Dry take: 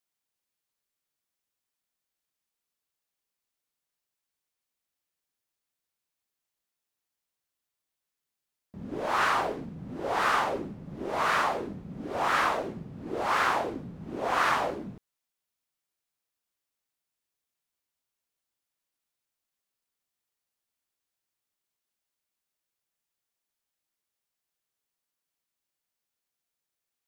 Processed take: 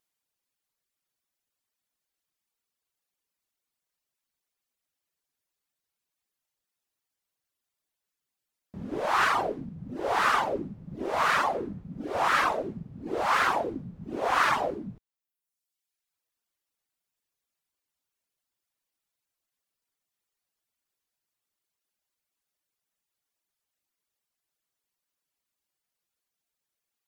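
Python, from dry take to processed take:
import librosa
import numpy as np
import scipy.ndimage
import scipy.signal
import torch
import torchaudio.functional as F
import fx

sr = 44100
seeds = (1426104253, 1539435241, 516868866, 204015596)

y = fx.vibrato(x, sr, rate_hz=2.6, depth_cents=13.0)
y = fx.dynamic_eq(y, sr, hz=1400.0, q=1.0, threshold_db=-53.0, ratio=4.0, max_db=4, at=(11.54, 12.03))
y = fx.dereverb_blind(y, sr, rt60_s=1.1)
y = F.gain(torch.from_numpy(y), 3.0).numpy()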